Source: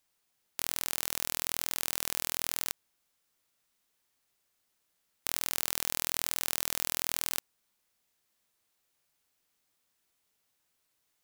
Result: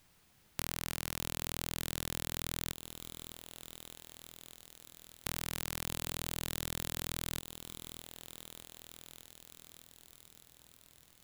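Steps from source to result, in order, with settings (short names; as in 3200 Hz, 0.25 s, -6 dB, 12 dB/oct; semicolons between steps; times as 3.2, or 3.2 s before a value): tone controls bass +13 dB, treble -5 dB; compressor 16:1, threshold -43 dBFS, peak gain reduction 16.5 dB; lo-fi delay 0.608 s, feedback 80%, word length 9-bit, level -11 dB; gain +12.5 dB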